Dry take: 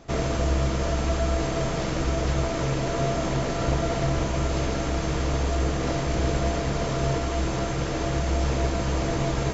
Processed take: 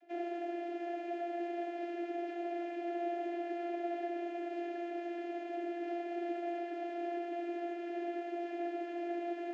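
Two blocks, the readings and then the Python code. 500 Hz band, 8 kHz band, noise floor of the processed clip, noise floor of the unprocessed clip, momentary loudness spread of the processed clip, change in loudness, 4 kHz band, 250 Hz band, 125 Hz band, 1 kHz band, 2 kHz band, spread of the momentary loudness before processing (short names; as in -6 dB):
-10.0 dB, n/a, -42 dBFS, -28 dBFS, 2 LU, -13.0 dB, -23.0 dB, -9.5 dB, under -40 dB, -9.5 dB, -14.5 dB, 2 LU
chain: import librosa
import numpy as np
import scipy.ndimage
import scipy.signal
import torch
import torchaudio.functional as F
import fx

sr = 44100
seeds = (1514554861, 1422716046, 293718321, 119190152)

y = fx.vowel_filter(x, sr, vowel='e')
y = fx.vocoder(y, sr, bands=32, carrier='saw', carrier_hz=345.0)
y = y * 10.0 ** (1.0 / 20.0)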